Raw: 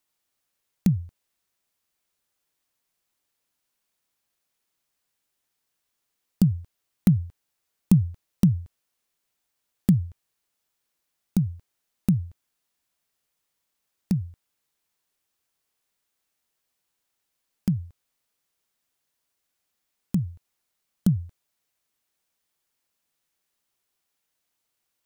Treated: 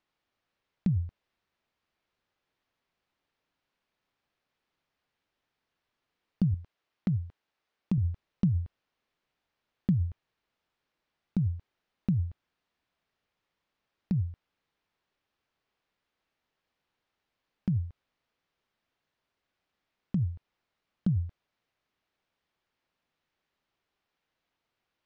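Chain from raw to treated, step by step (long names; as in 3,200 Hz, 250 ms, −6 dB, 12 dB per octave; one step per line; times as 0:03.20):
0:06.54–0:07.98: low-shelf EQ 170 Hz −10.5 dB
in parallel at +3 dB: compressor whose output falls as the input rises −29 dBFS, ratio −1
on the sum: high-frequency loss of the air 240 metres
level −8 dB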